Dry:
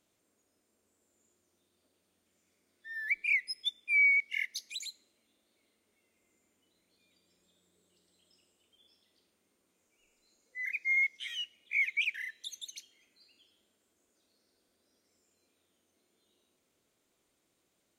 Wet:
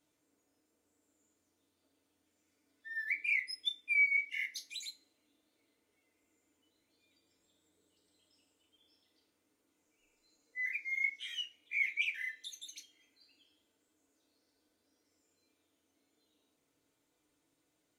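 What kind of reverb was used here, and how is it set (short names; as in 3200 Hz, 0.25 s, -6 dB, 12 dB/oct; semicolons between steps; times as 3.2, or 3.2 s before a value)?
FDN reverb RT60 0.32 s, low-frequency decay 1×, high-frequency decay 0.65×, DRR -0.5 dB; gain -5.5 dB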